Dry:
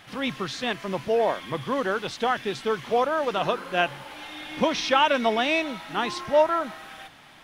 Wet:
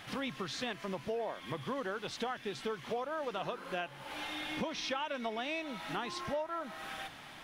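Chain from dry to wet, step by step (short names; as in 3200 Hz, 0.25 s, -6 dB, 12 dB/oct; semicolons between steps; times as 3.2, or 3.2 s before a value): compressor 5:1, threshold -36 dBFS, peak gain reduction 19.5 dB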